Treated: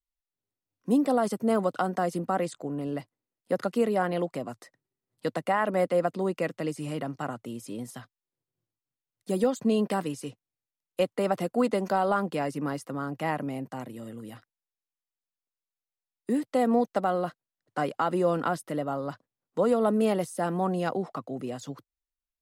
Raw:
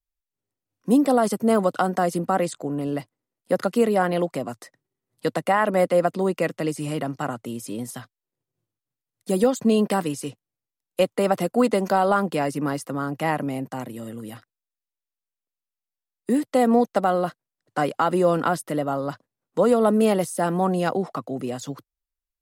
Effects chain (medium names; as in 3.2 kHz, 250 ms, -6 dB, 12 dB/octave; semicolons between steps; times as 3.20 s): treble shelf 7.5 kHz -5.5 dB; trim -5.5 dB